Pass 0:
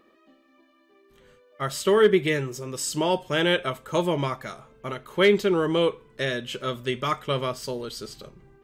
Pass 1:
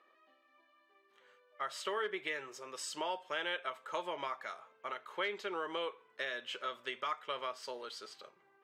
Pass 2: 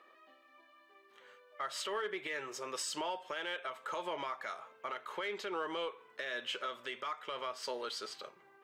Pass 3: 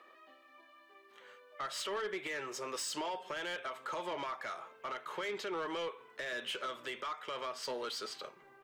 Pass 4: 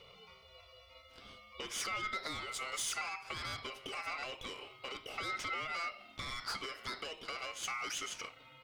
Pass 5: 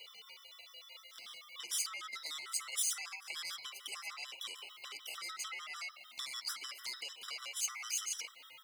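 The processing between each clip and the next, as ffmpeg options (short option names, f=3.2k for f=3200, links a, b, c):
-af "highpass=840,aemphasis=mode=reproduction:type=75fm,acompressor=threshold=-34dB:ratio=2.5,volume=-2.5dB"
-filter_complex "[0:a]asplit=2[a][b];[b]asoftclip=type=tanh:threshold=-37dB,volume=-7.5dB[c];[a][c]amix=inputs=2:normalize=0,alimiter=level_in=8dB:limit=-24dB:level=0:latency=1:release=171,volume=-8dB,volume=3dB"
-filter_complex "[0:a]acrossover=split=310[a][b];[a]aecho=1:1:1138:0.2[c];[b]asoftclip=type=tanh:threshold=-36dB[d];[c][d]amix=inputs=2:normalize=0,volume=2.5dB"
-filter_complex "[0:a]acrossover=split=490|3000[a][b][c];[b]acompressor=threshold=-46dB:ratio=6[d];[a][d][c]amix=inputs=3:normalize=0,aeval=exprs='val(0)*sin(2*PI*1700*n/s)':c=same,volume=5dB"
-af "acompressor=threshold=-47dB:ratio=2.5,aderivative,afftfilt=real='re*gt(sin(2*PI*6.7*pts/sr)*(1-2*mod(floor(b*sr/1024/1000),2)),0)':imag='im*gt(sin(2*PI*6.7*pts/sr)*(1-2*mod(floor(b*sr/1024/1000),2)),0)':win_size=1024:overlap=0.75,volume=16.5dB"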